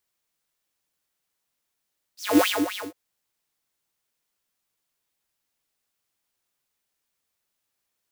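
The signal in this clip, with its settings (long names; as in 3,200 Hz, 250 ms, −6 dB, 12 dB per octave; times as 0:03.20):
subtractive patch with filter wobble G2, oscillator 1 square, noise −7.5 dB, filter highpass, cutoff 930 Hz, Q 7.3, filter envelope 2 octaves, filter decay 0.08 s, filter sustain 5%, attack 242 ms, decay 0.23 s, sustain −11 dB, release 0.15 s, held 0.61 s, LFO 3.9 Hz, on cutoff 1.8 octaves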